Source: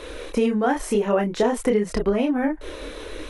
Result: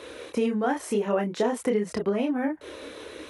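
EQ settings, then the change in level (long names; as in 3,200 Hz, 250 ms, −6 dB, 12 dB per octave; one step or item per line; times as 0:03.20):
high-pass filter 88 Hz 24 dB per octave
−4.5 dB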